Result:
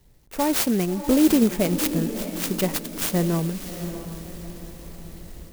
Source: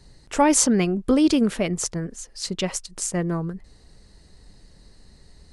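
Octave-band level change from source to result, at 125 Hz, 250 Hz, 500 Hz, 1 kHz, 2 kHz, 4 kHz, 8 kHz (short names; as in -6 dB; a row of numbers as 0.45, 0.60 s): +2.0, +0.5, 0.0, -4.5, -1.0, -0.5, -5.5 dB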